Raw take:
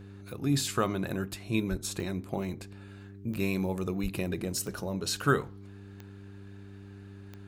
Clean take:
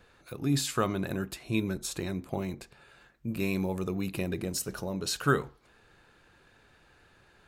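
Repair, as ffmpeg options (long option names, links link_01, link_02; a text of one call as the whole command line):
ffmpeg -i in.wav -filter_complex "[0:a]adeclick=threshold=4,bandreject=frequency=99:width_type=h:width=4,bandreject=frequency=198:width_type=h:width=4,bandreject=frequency=297:width_type=h:width=4,bandreject=frequency=396:width_type=h:width=4,asplit=3[link_01][link_02][link_03];[link_01]afade=type=out:start_time=1.7:duration=0.02[link_04];[link_02]highpass=frequency=140:width=0.5412,highpass=frequency=140:width=1.3066,afade=type=in:start_time=1.7:duration=0.02,afade=type=out:start_time=1.82:duration=0.02[link_05];[link_03]afade=type=in:start_time=1.82:duration=0.02[link_06];[link_04][link_05][link_06]amix=inputs=3:normalize=0,asplit=3[link_07][link_08][link_09];[link_07]afade=type=out:start_time=4.02:duration=0.02[link_10];[link_08]highpass=frequency=140:width=0.5412,highpass=frequency=140:width=1.3066,afade=type=in:start_time=4.02:duration=0.02,afade=type=out:start_time=4.14:duration=0.02[link_11];[link_09]afade=type=in:start_time=4.14:duration=0.02[link_12];[link_10][link_11][link_12]amix=inputs=3:normalize=0" out.wav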